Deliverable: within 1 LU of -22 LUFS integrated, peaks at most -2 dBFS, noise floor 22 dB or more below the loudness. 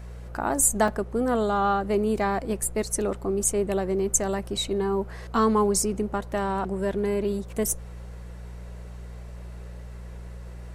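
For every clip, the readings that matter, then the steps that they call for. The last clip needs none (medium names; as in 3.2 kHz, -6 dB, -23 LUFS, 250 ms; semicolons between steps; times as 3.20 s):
dropouts 2; longest dropout 3.1 ms; hum 60 Hz; highest harmonic 180 Hz; hum level -37 dBFS; loudness -25.5 LUFS; peak level -8.5 dBFS; loudness target -22.0 LUFS
-> interpolate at 0.88/4.57 s, 3.1 ms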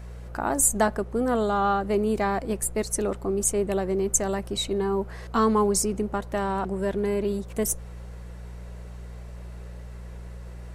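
dropouts 0; hum 60 Hz; highest harmonic 180 Hz; hum level -37 dBFS
-> de-hum 60 Hz, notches 3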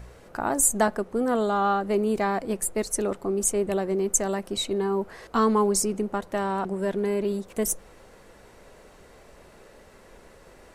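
hum not found; loudness -25.5 LUFS; peak level -8.5 dBFS; loudness target -22.0 LUFS
-> trim +3.5 dB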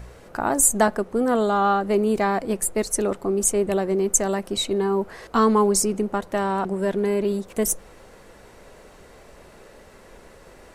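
loudness -22.0 LUFS; peak level -5.0 dBFS; noise floor -49 dBFS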